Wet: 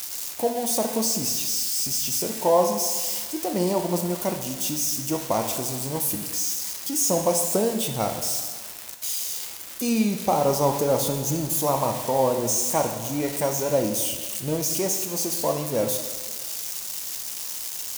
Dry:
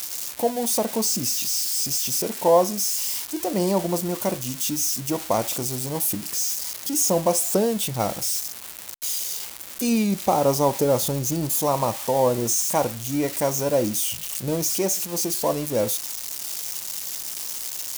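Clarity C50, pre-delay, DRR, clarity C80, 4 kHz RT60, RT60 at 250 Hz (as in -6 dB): 7.0 dB, 10 ms, 5.0 dB, 8.5 dB, 1.4 s, 1.4 s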